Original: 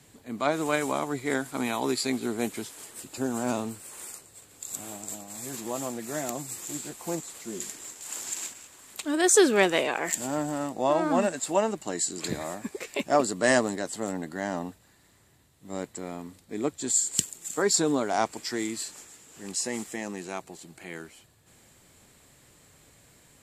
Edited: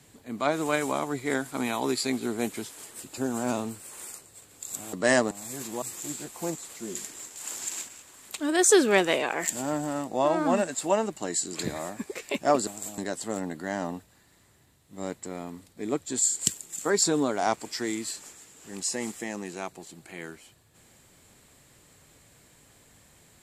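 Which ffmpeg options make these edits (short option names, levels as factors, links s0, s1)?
-filter_complex "[0:a]asplit=6[s0][s1][s2][s3][s4][s5];[s0]atrim=end=4.932[s6];[s1]atrim=start=13.318:end=13.702[s7];[s2]atrim=start=5.238:end=5.752[s8];[s3]atrim=start=6.468:end=13.322[s9];[s4]atrim=start=4.928:end=5.242[s10];[s5]atrim=start=13.698[s11];[s6][s7]acrossfade=d=0.004:c1=hsin:c2=hsin[s12];[s12][s8]acrossfade=d=0.004:c1=hsin:c2=hsin[s13];[s13][s9]acrossfade=d=0.004:c1=hsin:c2=hsin[s14];[s14][s10]acrossfade=d=0.004:c1=hsin:c2=hsin[s15];[s15][s11]acrossfade=d=0.004:c1=hsin:c2=hsin"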